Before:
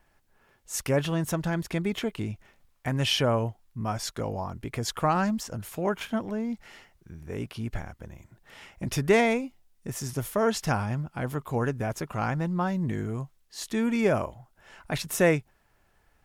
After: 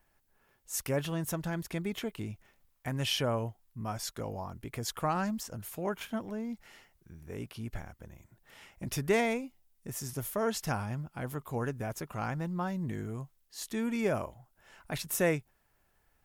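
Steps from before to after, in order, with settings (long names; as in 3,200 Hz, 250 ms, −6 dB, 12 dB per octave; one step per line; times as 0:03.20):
high-shelf EQ 11,000 Hz +12 dB
level −6.5 dB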